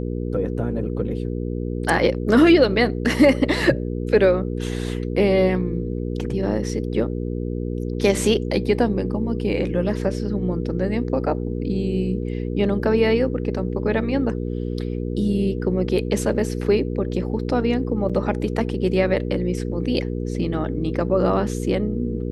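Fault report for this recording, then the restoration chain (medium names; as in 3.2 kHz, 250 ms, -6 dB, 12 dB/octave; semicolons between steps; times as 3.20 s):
hum 60 Hz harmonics 8 -26 dBFS
18.09–18.10 s: dropout 6.3 ms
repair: de-hum 60 Hz, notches 8; interpolate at 18.09 s, 6.3 ms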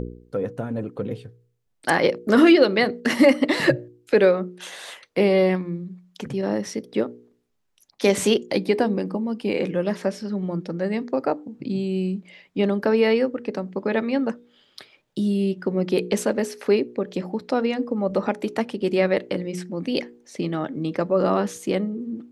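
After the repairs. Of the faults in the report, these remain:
nothing left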